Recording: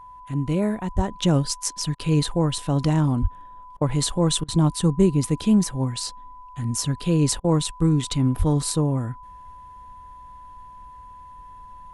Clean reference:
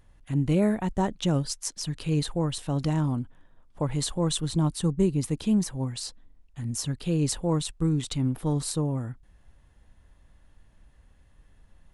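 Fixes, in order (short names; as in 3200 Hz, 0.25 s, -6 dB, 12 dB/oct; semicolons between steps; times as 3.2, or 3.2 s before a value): notch 1000 Hz, Q 30; 0.95–1.07 HPF 140 Hz 24 dB/oct; 3.21–3.33 HPF 140 Hz 24 dB/oct; 8.38–8.5 HPF 140 Hz 24 dB/oct; interpolate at 1.95/3.77/4.44/7.4, 42 ms; gain 0 dB, from 1.13 s -5.5 dB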